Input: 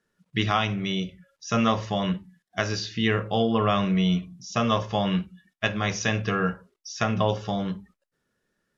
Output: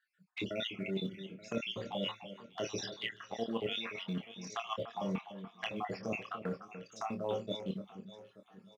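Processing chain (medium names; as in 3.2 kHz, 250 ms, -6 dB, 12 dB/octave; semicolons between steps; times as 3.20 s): random holes in the spectrogram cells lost 66%; recorder AGC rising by 5.4 dB/s; high-pass 270 Hz 12 dB/octave; touch-sensitive flanger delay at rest 6.8 ms, full sweep at -29.5 dBFS; in parallel at -11 dB: short-mantissa float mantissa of 2-bit; on the sum: treble shelf 4.5 kHz -10.5 dB; reverse; compression 5:1, threshold -39 dBFS, peak gain reduction 17 dB; reverse; doubling 26 ms -8 dB; echo whose repeats swap between lows and highs 293 ms, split 1.8 kHz, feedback 64%, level -11 dB; trim +3 dB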